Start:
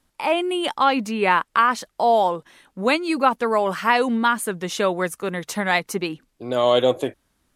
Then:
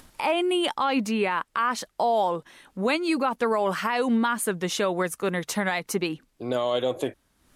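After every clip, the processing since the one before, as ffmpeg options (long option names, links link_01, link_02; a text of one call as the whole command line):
ffmpeg -i in.wav -af "alimiter=limit=-15dB:level=0:latency=1:release=102,acompressor=mode=upward:threshold=-39dB:ratio=2.5" out.wav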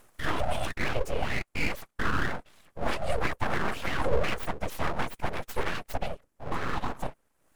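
ffmpeg -i in.wav -af "afftfilt=real='hypot(re,im)*cos(2*PI*random(0))':imag='hypot(re,im)*sin(2*PI*random(1))':win_size=512:overlap=0.75,equalizer=frequency=125:width_type=o:width=1:gain=-8,equalizer=frequency=250:width_type=o:width=1:gain=10,equalizer=frequency=1000:width_type=o:width=1:gain=6,equalizer=frequency=4000:width_type=o:width=1:gain=-10,equalizer=frequency=8000:width_type=o:width=1:gain=3,aeval=exprs='abs(val(0))':channel_layout=same" out.wav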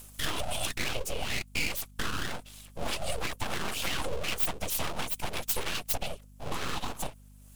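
ffmpeg -i in.wav -af "acompressor=threshold=-28dB:ratio=5,aexciter=amount=3.3:drive=6.3:freq=2600,aeval=exprs='val(0)+0.00251*(sin(2*PI*50*n/s)+sin(2*PI*2*50*n/s)/2+sin(2*PI*3*50*n/s)/3+sin(2*PI*4*50*n/s)/4+sin(2*PI*5*50*n/s)/5)':channel_layout=same" out.wav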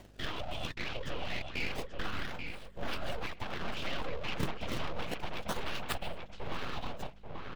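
ffmpeg -i in.wav -filter_complex "[0:a]acrossover=split=5000[link_01][link_02];[link_01]asplit=2[link_03][link_04];[link_04]adelay=835,lowpass=frequency=2400:poles=1,volume=-3.5dB,asplit=2[link_05][link_06];[link_06]adelay=835,lowpass=frequency=2400:poles=1,volume=0.3,asplit=2[link_07][link_08];[link_08]adelay=835,lowpass=frequency=2400:poles=1,volume=0.3,asplit=2[link_09][link_10];[link_10]adelay=835,lowpass=frequency=2400:poles=1,volume=0.3[link_11];[link_03][link_05][link_07][link_09][link_11]amix=inputs=5:normalize=0[link_12];[link_02]acrusher=samples=34:mix=1:aa=0.000001:lfo=1:lforange=54.4:lforate=0.29[link_13];[link_12][link_13]amix=inputs=2:normalize=0,volume=-5.5dB" out.wav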